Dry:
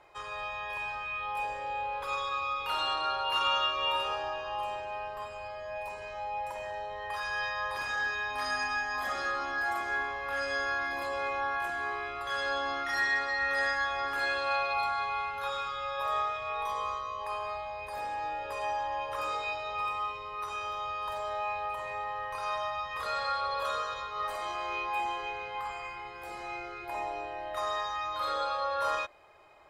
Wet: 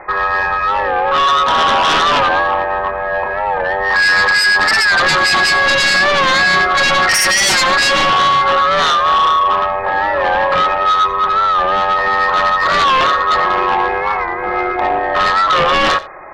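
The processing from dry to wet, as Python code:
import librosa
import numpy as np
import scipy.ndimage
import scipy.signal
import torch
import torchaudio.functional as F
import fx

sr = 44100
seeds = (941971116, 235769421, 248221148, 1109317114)

p1 = scipy.signal.sosfilt(scipy.signal.ellip(4, 1.0, 40, 2100.0, 'lowpass', fs=sr, output='sos'), x)
p2 = fx.peak_eq(p1, sr, hz=1600.0, db=3.5, octaves=1.2)
p3 = fx.hum_notches(p2, sr, base_hz=60, count=2)
p4 = p3 + 0.38 * np.pad(p3, (int(5.4 * sr / 1000.0), 0))[:len(p3)]
p5 = 10.0 ** (-32.5 / 20.0) * np.tanh(p4 / 10.0 ** (-32.5 / 20.0))
p6 = p4 + F.gain(torch.from_numpy(p5), -9.5).numpy()
p7 = fx.stretch_grains(p6, sr, factor=0.55, grain_ms=22.0)
p8 = fx.fold_sine(p7, sr, drive_db=13, ceiling_db=-15.5)
p9 = p8 + fx.echo_single(p8, sr, ms=88, db=-18.0, dry=0)
p10 = fx.record_warp(p9, sr, rpm=45.0, depth_cents=100.0)
y = F.gain(torch.from_numpy(p10), 6.0).numpy()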